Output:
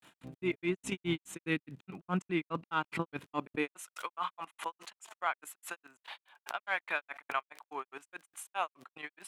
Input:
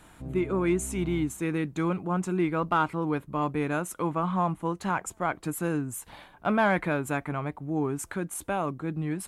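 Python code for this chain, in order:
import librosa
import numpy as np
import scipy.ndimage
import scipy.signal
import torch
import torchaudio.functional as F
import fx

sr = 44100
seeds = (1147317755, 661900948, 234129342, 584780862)

y = fx.highpass(x, sr, hz=84.0, slope=6)
y = fx.peak_eq(y, sr, hz=2800.0, db=11.0, octaves=1.6)
y = fx.notch(y, sr, hz=2200.0, q=21.0)
y = fx.level_steps(y, sr, step_db=15)
y = fx.dmg_crackle(y, sr, seeds[0], per_s=29.0, level_db=-46.0)
y = fx.filter_sweep_highpass(y, sr, from_hz=130.0, to_hz=820.0, start_s=3.31, end_s=3.9, q=0.91)
y = fx.granulator(y, sr, seeds[1], grain_ms=141.0, per_s=4.8, spray_ms=100.0, spread_st=0)
y = fx.pre_swell(y, sr, db_per_s=140.0)
y = y * 10.0 ** (1.5 / 20.0)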